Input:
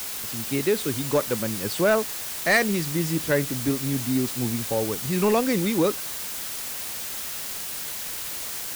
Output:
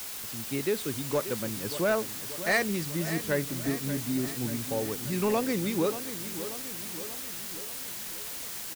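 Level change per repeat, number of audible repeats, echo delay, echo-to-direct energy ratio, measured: -4.5 dB, 5, 0.584 s, -10.0 dB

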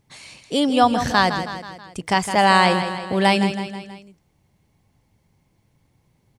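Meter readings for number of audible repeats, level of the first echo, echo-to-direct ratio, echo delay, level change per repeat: 4, -9.5 dB, -8.0 dB, 0.161 s, -5.5 dB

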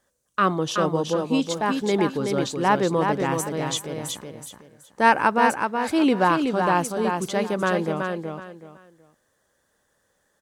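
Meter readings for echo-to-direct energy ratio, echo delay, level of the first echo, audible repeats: -4.5 dB, 0.374 s, -5.0 dB, 3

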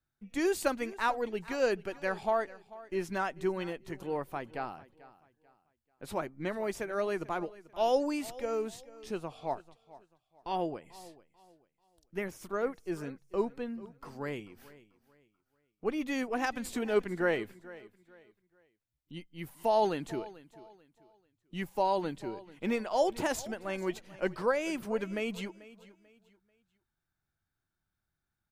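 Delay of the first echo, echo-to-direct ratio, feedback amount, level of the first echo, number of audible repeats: 0.44 s, -18.5 dB, 31%, -19.0 dB, 2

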